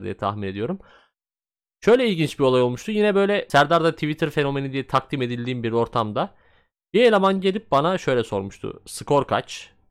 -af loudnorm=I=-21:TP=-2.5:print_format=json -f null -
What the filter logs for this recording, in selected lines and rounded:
"input_i" : "-21.3",
"input_tp" : "-7.5",
"input_lra" : "2.7",
"input_thresh" : "-32.0",